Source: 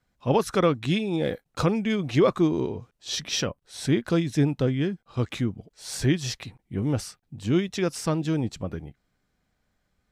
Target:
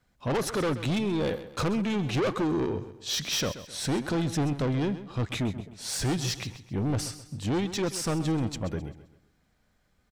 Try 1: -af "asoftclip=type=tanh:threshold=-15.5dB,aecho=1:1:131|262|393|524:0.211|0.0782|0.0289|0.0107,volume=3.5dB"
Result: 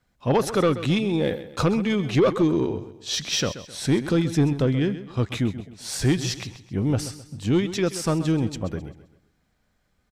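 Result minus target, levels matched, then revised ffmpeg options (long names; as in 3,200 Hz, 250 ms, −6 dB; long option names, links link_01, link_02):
soft clipping: distortion −10 dB
-af "asoftclip=type=tanh:threshold=-27.5dB,aecho=1:1:131|262|393|524:0.211|0.0782|0.0289|0.0107,volume=3.5dB"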